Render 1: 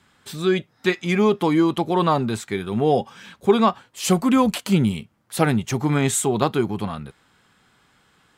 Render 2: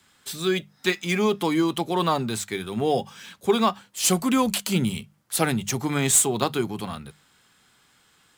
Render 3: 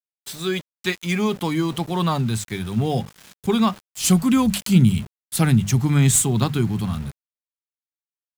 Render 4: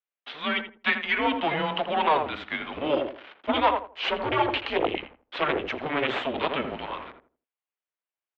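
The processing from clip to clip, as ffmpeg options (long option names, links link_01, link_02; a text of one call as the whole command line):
ffmpeg -i in.wav -filter_complex "[0:a]highshelf=frequency=3100:gain=11,bandreject=frequency=50:width_type=h:width=6,bandreject=frequency=100:width_type=h:width=6,bandreject=frequency=150:width_type=h:width=6,bandreject=frequency=200:width_type=h:width=6,acrossover=split=110|1300|2300[link_01][link_02][link_03][link_04];[link_04]acrusher=bits=3:mode=log:mix=0:aa=0.000001[link_05];[link_01][link_02][link_03][link_05]amix=inputs=4:normalize=0,volume=-4.5dB" out.wav
ffmpeg -i in.wav -af "asubboost=boost=8:cutoff=170,aeval=exprs='val(0)*gte(abs(val(0)),0.015)':channel_layout=same" out.wav
ffmpeg -i in.wav -filter_complex "[0:a]asplit=2[link_01][link_02];[link_02]adelay=82,lowpass=frequency=920:poles=1,volume=-4dB,asplit=2[link_03][link_04];[link_04]adelay=82,lowpass=frequency=920:poles=1,volume=0.3,asplit=2[link_05][link_06];[link_06]adelay=82,lowpass=frequency=920:poles=1,volume=0.3,asplit=2[link_07][link_08];[link_08]adelay=82,lowpass=frequency=920:poles=1,volume=0.3[link_09];[link_01][link_03][link_05][link_07][link_09]amix=inputs=5:normalize=0,aeval=exprs='0.75*(cos(1*acos(clip(val(0)/0.75,-1,1)))-cos(1*PI/2))+0.335*(cos(5*acos(clip(val(0)/0.75,-1,1)))-cos(5*PI/2))+0.15*(cos(8*acos(clip(val(0)/0.75,-1,1)))-cos(8*PI/2))':channel_layout=same,highpass=frequency=530:width_type=q:width=0.5412,highpass=frequency=530:width_type=q:width=1.307,lowpass=frequency=3300:width_type=q:width=0.5176,lowpass=frequency=3300:width_type=q:width=0.7071,lowpass=frequency=3300:width_type=q:width=1.932,afreqshift=-150,volume=-5.5dB" out.wav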